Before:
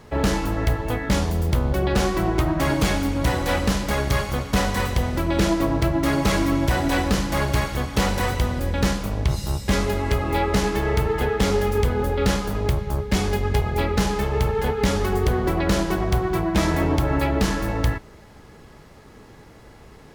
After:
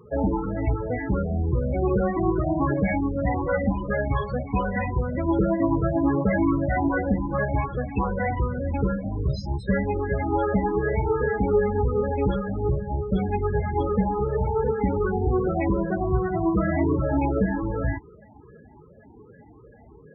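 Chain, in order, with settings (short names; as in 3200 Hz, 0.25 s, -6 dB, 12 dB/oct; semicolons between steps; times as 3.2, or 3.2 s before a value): moving spectral ripple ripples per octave 0.64, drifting +2.6 Hz, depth 8 dB; HPF 44 Hz 24 dB/oct; low shelf 130 Hz -5 dB; loudest bins only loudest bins 16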